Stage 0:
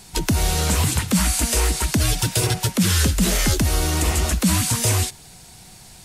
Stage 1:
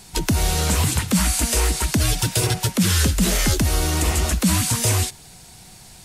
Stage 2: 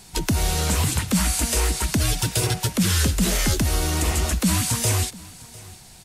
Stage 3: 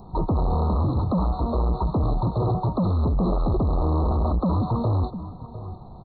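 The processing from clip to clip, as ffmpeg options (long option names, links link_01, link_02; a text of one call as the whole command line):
ffmpeg -i in.wav -af anull out.wav
ffmpeg -i in.wav -af "aecho=1:1:702:0.0841,volume=-2dB" out.wav
ffmpeg -i in.wav -af "aresample=8000,volume=28dB,asoftclip=hard,volume=-28dB,aresample=44100,asuperstop=centerf=2300:order=20:qfactor=0.78,volume=8.5dB" out.wav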